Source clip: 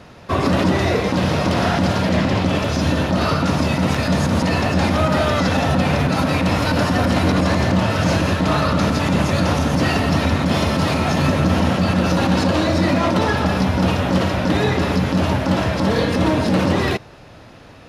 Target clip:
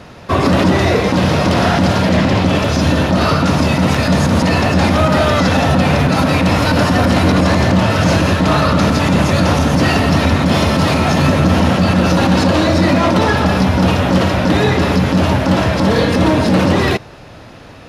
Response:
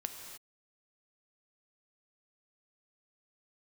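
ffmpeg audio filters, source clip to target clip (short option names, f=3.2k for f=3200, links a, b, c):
-af "acontrast=42"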